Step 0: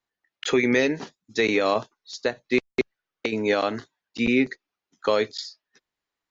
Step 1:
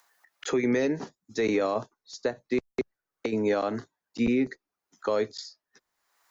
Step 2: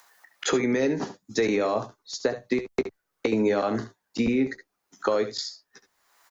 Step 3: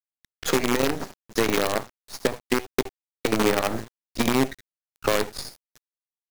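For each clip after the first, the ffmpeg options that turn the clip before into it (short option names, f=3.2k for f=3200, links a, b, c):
-filter_complex "[0:a]equalizer=f=3k:w=0.88:g=-10.5,acrossover=split=120|690[a][b][c];[c]acompressor=mode=upward:threshold=-47dB:ratio=2.5[d];[a][b][d]amix=inputs=3:normalize=0,alimiter=limit=-16.5dB:level=0:latency=1:release=99"
-filter_complex "[0:a]acompressor=threshold=-28dB:ratio=6,asplit=2[a][b];[b]aecho=0:1:15|69|79:0.237|0.211|0.168[c];[a][c]amix=inputs=2:normalize=0,volume=7.5dB"
-af "acrusher=bits=4:dc=4:mix=0:aa=0.000001,aeval=exprs='sgn(val(0))*max(abs(val(0))-0.00841,0)':c=same,aeval=exprs='0.299*(cos(1*acos(clip(val(0)/0.299,-1,1)))-cos(1*PI/2))+0.015*(cos(5*acos(clip(val(0)/0.299,-1,1)))-cos(5*PI/2))':c=same,volume=1.5dB"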